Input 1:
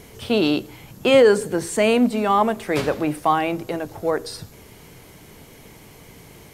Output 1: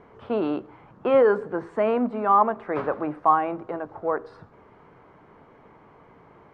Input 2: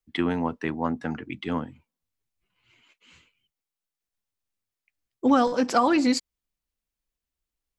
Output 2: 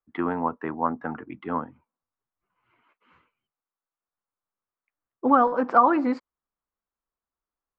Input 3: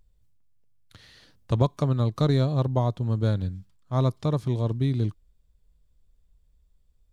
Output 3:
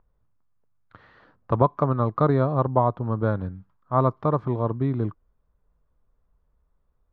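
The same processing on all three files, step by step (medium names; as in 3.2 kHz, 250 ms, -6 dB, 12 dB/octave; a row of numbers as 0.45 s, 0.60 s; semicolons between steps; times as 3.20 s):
resonant low-pass 1.2 kHz, resonance Q 2.2; bass shelf 150 Hz -11 dB; normalise loudness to -24 LUFS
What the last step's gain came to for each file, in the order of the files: -5.0 dB, -0.5 dB, +4.5 dB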